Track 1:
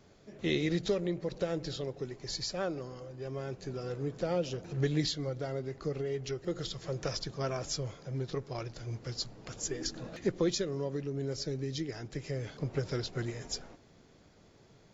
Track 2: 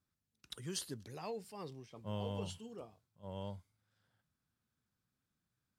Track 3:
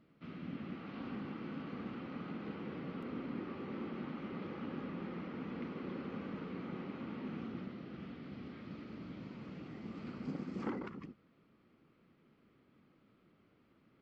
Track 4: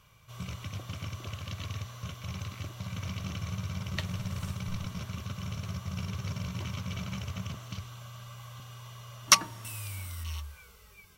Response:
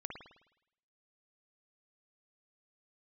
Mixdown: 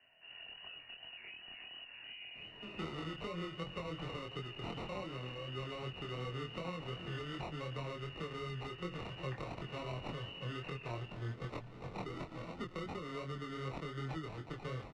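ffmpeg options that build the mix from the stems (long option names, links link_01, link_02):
-filter_complex "[0:a]acrusher=samples=27:mix=1:aa=0.000001,lowpass=3400,alimiter=level_in=2dB:limit=-24dB:level=0:latency=1:release=191,volume=-2dB,adelay=2350,volume=3dB[link_01];[1:a]volume=0.5dB,asplit=2[link_02][link_03];[2:a]volume=-4dB[link_04];[3:a]aemphasis=mode=production:type=75kf,volume=-5.5dB[link_05];[link_03]apad=whole_len=618000[link_06];[link_04][link_06]sidechaincompress=threshold=-47dB:ratio=8:attack=16:release=328[link_07];[link_02][link_07][link_05]amix=inputs=3:normalize=0,lowpass=frequency=2600:width_type=q:width=0.5098,lowpass=frequency=2600:width_type=q:width=0.6013,lowpass=frequency=2600:width_type=q:width=0.9,lowpass=frequency=2600:width_type=q:width=2.563,afreqshift=-3000,acompressor=threshold=-45dB:ratio=6,volume=0dB[link_08];[link_01][link_08]amix=inputs=2:normalize=0,acrossover=split=93|190|570[link_09][link_10][link_11][link_12];[link_09]acompressor=threshold=-50dB:ratio=4[link_13];[link_10]acompressor=threshold=-44dB:ratio=4[link_14];[link_11]acompressor=threshold=-46dB:ratio=4[link_15];[link_12]acompressor=threshold=-41dB:ratio=4[link_16];[link_13][link_14][link_15][link_16]amix=inputs=4:normalize=0,flanger=delay=22.5:depth=3.4:speed=2.7"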